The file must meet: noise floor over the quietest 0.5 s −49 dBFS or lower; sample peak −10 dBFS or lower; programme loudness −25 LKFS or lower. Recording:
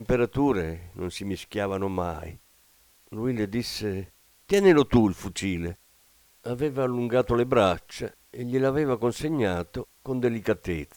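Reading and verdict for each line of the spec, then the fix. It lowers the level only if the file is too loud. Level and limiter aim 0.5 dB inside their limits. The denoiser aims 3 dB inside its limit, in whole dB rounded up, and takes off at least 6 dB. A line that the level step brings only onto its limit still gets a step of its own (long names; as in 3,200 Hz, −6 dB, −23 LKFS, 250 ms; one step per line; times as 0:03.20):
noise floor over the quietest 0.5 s −60 dBFS: in spec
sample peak −8.0 dBFS: out of spec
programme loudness −26.0 LKFS: in spec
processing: brickwall limiter −10.5 dBFS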